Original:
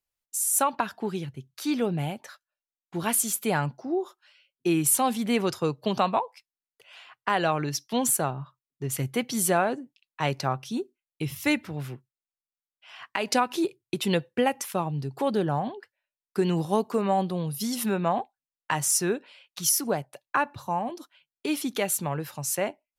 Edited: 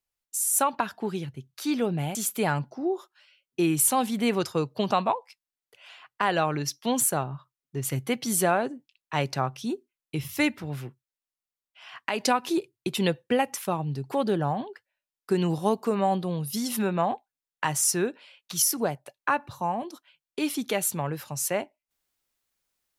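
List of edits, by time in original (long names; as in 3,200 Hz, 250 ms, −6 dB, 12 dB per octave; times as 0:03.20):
0:02.15–0:03.22: remove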